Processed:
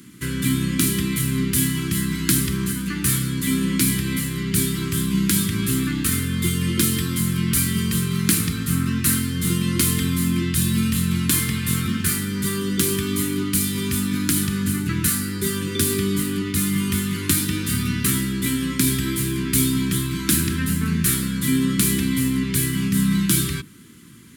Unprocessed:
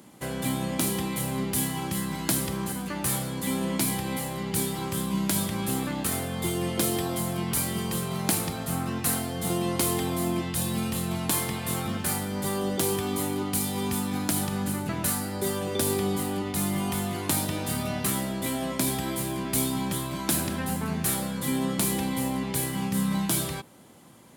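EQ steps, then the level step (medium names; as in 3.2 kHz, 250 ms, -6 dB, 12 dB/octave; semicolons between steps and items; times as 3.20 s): Chebyshev band-stop 310–1500 Hz, order 2; bass shelf 110 Hz +7.5 dB; hum notches 50/100/150/200/250/300/350 Hz; +7.5 dB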